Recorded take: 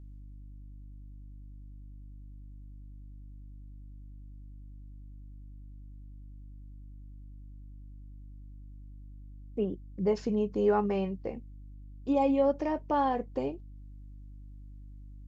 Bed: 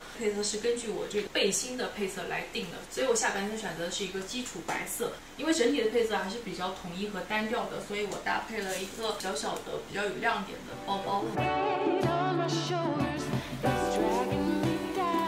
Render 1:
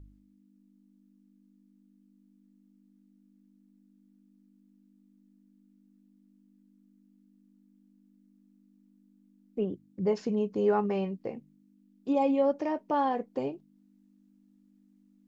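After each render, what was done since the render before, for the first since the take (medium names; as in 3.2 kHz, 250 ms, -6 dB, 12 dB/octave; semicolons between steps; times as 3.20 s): de-hum 50 Hz, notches 3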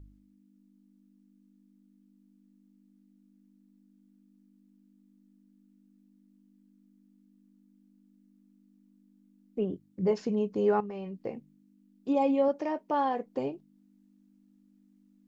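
9.67–10.11 s: doubling 22 ms -8.5 dB; 10.80–11.23 s: compression 10:1, threshold -35 dBFS; 12.48–13.26 s: bass shelf 150 Hz -9.5 dB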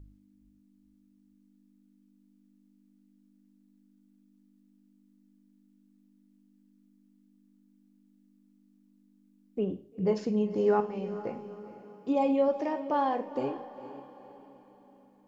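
echo that smears into a reverb 458 ms, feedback 44%, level -13.5 dB; Schroeder reverb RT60 0.45 s, combs from 30 ms, DRR 11.5 dB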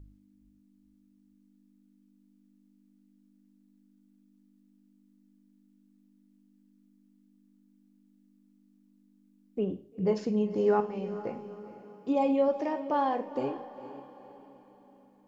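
no audible change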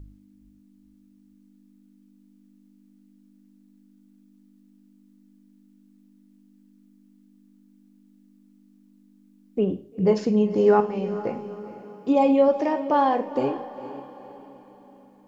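trim +7.5 dB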